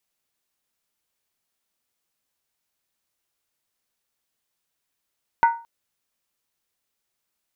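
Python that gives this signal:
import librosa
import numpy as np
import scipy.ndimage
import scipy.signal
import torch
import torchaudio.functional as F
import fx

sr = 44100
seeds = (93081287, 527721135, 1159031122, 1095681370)

y = fx.strike_skin(sr, length_s=0.22, level_db=-10.0, hz=928.0, decay_s=0.35, tilt_db=9, modes=5)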